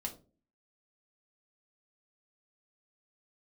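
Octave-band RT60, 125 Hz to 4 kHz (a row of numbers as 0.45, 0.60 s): 0.55, 0.60, 0.45, 0.30, 0.20, 0.20 s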